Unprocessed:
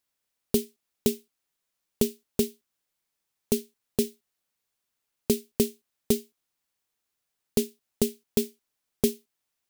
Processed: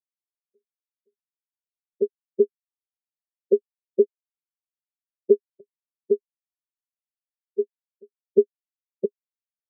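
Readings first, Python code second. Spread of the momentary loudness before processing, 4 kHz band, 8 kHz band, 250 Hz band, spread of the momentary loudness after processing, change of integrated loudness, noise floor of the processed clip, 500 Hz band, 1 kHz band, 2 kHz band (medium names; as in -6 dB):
7 LU, under -40 dB, under -40 dB, -5.5 dB, 9 LU, +4.0 dB, under -85 dBFS, +7.0 dB, under -30 dB, under -35 dB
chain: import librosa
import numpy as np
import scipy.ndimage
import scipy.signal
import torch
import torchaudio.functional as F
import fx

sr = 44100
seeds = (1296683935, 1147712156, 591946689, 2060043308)

y = fx.env_lowpass_down(x, sr, base_hz=320.0, full_db=-23.0)
y = scipy.signal.sosfilt(scipy.signal.butter(4, 160.0, 'highpass', fs=sr, output='sos'), y)
y = fx.peak_eq(y, sr, hz=480.0, db=12.5, octaves=2.4)
y = fx.env_flanger(y, sr, rest_ms=6.2, full_db=-12.5)
y = fx.step_gate(y, sr, bpm=174, pattern='xx..xx.xx', floor_db=-12.0, edge_ms=4.5)
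y = y + 0.71 * np.pad(y, (int(1.8 * sr / 1000.0), 0))[:len(y)]
y = fx.rider(y, sr, range_db=4, speed_s=0.5)
y = fx.spectral_expand(y, sr, expansion=4.0)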